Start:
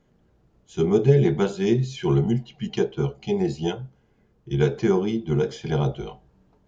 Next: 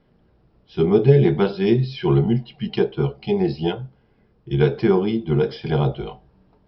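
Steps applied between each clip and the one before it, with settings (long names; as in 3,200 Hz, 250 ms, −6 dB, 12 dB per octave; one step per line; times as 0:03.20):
Chebyshev low-pass filter 5,500 Hz, order 10
level +4 dB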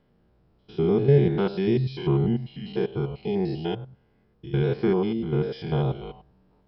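spectrum averaged block by block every 100 ms
level −3.5 dB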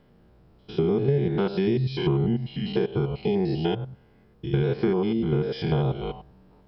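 downward compressor 4 to 1, threshold −28 dBFS, peak gain reduction 13 dB
level +7 dB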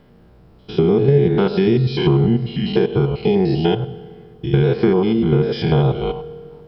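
convolution reverb RT60 2.0 s, pre-delay 3 ms, DRR 15.5 dB
level +8 dB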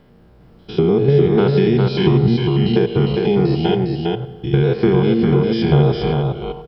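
single-tap delay 405 ms −3.5 dB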